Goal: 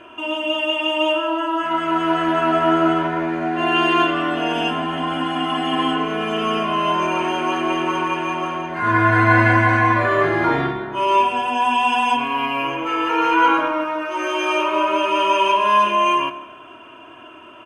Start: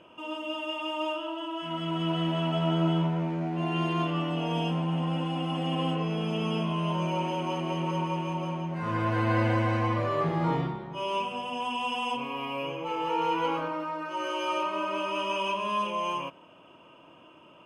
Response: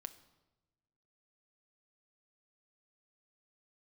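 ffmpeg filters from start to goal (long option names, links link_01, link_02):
-filter_complex "[0:a]equalizer=frequency=1600:width=2.2:gain=12.5,bandreject=frequency=5300:width=9.4,aecho=1:1:2.9:0.82,asplit=2[link_01][link_02];[1:a]atrim=start_sample=2205,asetrate=30429,aresample=44100[link_03];[link_02][link_03]afir=irnorm=-1:irlink=0,volume=12.5dB[link_04];[link_01][link_04]amix=inputs=2:normalize=0,volume=-4.5dB"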